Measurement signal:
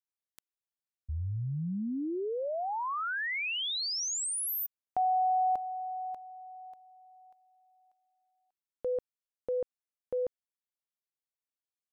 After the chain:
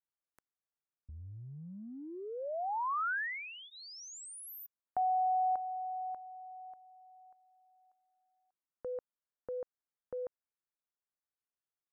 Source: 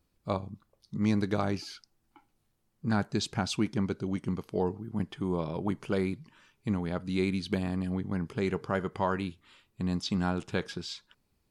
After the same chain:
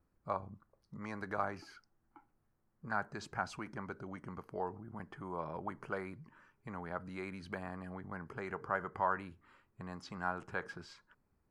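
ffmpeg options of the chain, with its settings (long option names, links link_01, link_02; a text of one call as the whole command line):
ffmpeg -i in.wav -filter_complex "[0:a]highshelf=frequency=2200:width_type=q:width=1.5:gain=-11.5,bandreject=frequency=3600:width=8.9,acrossover=split=600|3700[link_01][link_02][link_03];[link_01]acompressor=threshold=-44dB:ratio=6:attack=3.1:release=44:knee=6:detection=peak[link_04];[link_04][link_02][link_03]amix=inputs=3:normalize=0,volume=-2.5dB" out.wav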